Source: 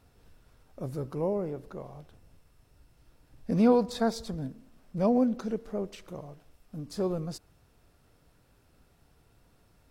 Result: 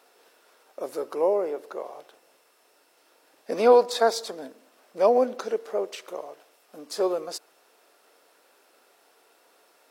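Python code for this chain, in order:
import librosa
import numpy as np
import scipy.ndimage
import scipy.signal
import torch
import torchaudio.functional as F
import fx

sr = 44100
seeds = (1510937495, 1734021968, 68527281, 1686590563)

y = scipy.signal.sosfilt(scipy.signal.butter(4, 400.0, 'highpass', fs=sr, output='sos'), x)
y = y * librosa.db_to_amplitude(9.0)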